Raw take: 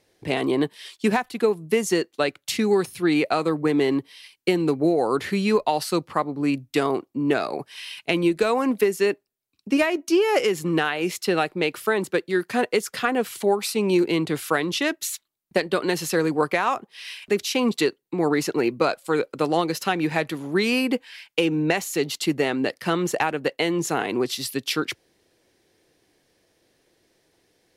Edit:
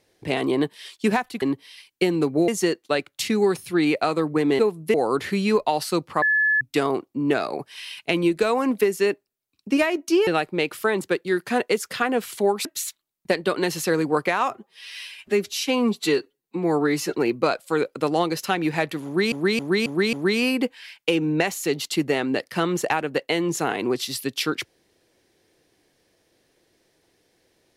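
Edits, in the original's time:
0:01.42–0:01.77: swap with 0:03.88–0:04.94
0:06.22–0:06.61: beep over 1,720 Hz −16.5 dBFS
0:10.27–0:11.30: remove
0:13.68–0:14.91: remove
0:16.77–0:18.53: time-stretch 1.5×
0:20.43–0:20.70: repeat, 5 plays

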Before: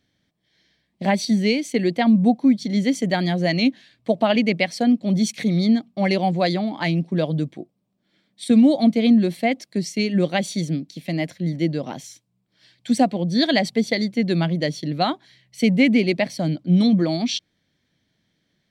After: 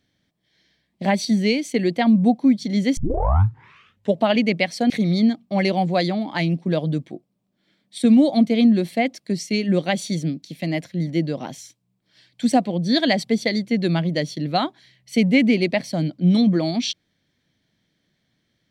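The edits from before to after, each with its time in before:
0:02.97: tape start 1.24 s
0:04.90–0:05.36: remove

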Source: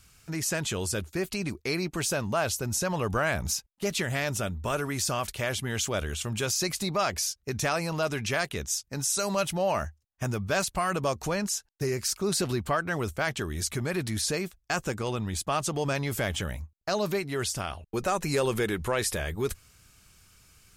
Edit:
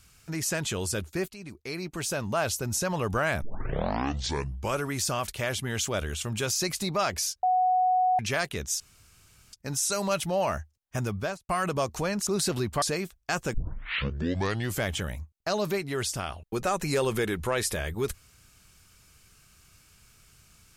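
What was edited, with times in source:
0:01.28–0:02.41: fade in, from −15 dB
0:03.42: tape start 1.39 s
0:07.43–0:08.19: beep over 738 Hz −20 dBFS
0:08.80: splice in room tone 0.73 s
0:10.41–0:10.76: fade out and dull
0:11.54–0:12.20: remove
0:12.75–0:14.23: remove
0:14.95: tape start 1.28 s

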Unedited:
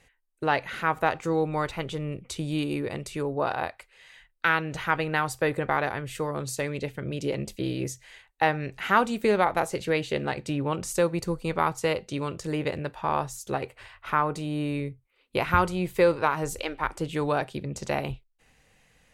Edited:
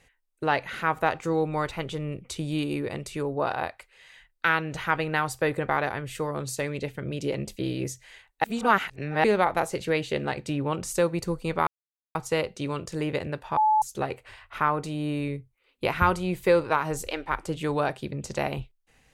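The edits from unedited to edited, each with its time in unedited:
0:08.44–0:09.24: reverse
0:11.67: splice in silence 0.48 s
0:13.09–0:13.34: beep over 861 Hz −17.5 dBFS

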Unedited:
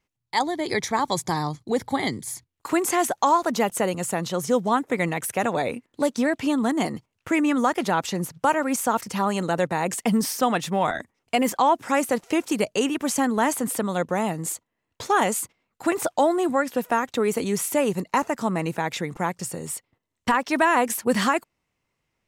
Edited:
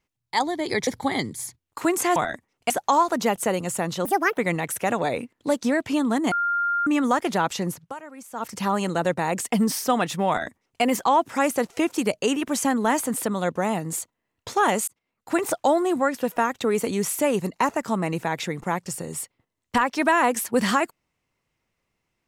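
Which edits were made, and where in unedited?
0:00.87–0:01.75: remove
0:04.39–0:04.91: play speed 159%
0:06.85–0:07.40: beep over 1,400 Hz −20.5 dBFS
0:08.22–0:09.11: duck −17.5 dB, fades 0.26 s
0:10.82–0:11.36: duplicate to 0:03.04
0:15.41–0:15.88: fade in

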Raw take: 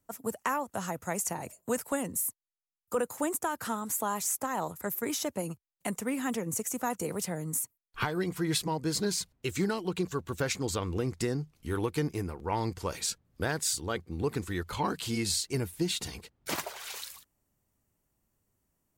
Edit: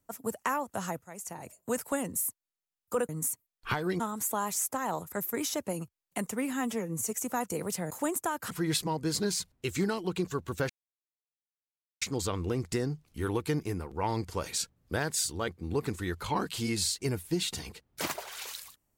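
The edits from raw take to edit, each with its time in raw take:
0:01.02–0:01.81: fade in, from −19 dB
0:03.09–0:03.69: swap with 0:07.40–0:08.31
0:06.22–0:06.61: time-stretch 1.5×
0:10.50: splice in silence 1.32 s

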